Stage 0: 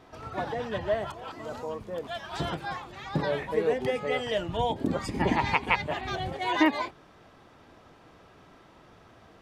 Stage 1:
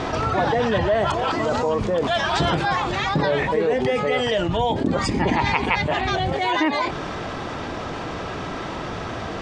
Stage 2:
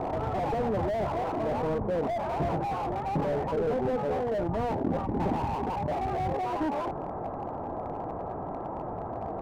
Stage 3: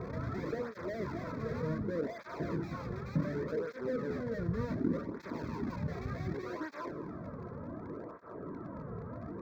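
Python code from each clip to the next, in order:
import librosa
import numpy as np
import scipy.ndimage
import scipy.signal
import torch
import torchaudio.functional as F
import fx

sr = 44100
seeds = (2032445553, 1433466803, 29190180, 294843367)

y1 = fx.rider(x, sr, range_db=10, speed_s=2.0)
y1 = scipy.signal.sosfilt(scipy.signal.butter(4, 7800.0, 'lowpass', fs=sr, output='sos'), y1)
y1 = fx.env_flatten(y1, sr, amount_pct=70)
y2 = fx.quant_companded(y1, sr, bits=4)
y2 = fx.ladder_lowpass(y2, sr, hz=950.0, resonance_pct=50)
y2 = fx.slew_limit(y2, sr, full_power_hz=22.0)
y2 = y2 * 10.0 ** (1.5 / 20.0)
y3 = fx.fixed_phaser(y2, sr, hz=2900.0, stages=6)
y3 = fx.rev_plate(y3, sr, seeds[0], rt60_s=2.2, hf_ratio=0.8, predelay_ms=0, drr_db=11.5)
y3 = fx.flanger_cancel(y3, sr, hz=0.67, depth_ms=3.5)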